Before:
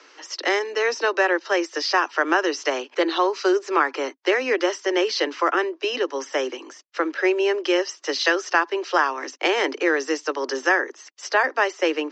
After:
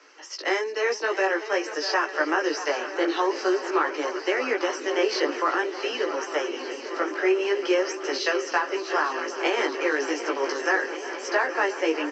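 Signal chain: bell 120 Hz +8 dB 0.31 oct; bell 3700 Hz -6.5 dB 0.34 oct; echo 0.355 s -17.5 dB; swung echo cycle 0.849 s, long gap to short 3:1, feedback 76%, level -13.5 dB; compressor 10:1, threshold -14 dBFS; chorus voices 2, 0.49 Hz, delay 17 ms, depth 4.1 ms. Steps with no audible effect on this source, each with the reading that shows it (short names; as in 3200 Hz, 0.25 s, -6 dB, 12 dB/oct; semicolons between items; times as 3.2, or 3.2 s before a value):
bell 120 Hz: input band starts at 240 Hz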